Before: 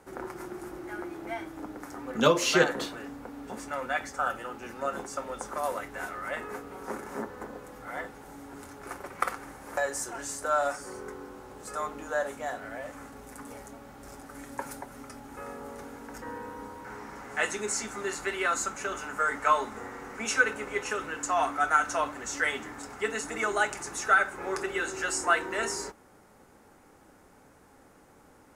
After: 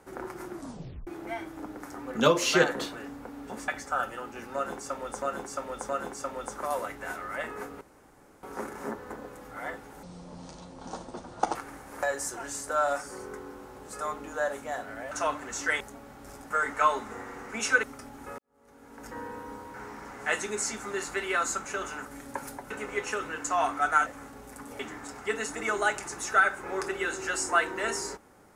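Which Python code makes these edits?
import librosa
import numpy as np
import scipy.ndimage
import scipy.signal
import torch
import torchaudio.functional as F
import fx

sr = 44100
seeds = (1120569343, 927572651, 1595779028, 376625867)

y = fx.edit(x, sr, fx.tape_stop(start_s=0.53, length_s=0.54),
    fx.cut(start_s=3.68, length_s=0.27),
    fx.repeat(start_s=4.82, length_s=0.67, count=3),
    fx.insert_room_tone(at_s=6.74, length_s=0.62),
    fx.speed_span(start_s=8.34, length_s=0.96, speed=0.63),
    fx.swap(start_s=12.86, length_s=0.73, other_s=21.85, other_length_s=0.69),
    fx.swap(start_s=14.29, length_s=0.65, other_s=19.16, other_length_s=1.33),
    fx.fade_in_span(start_s=15.49, length_s=0.73, curve='qua'), tone=tone)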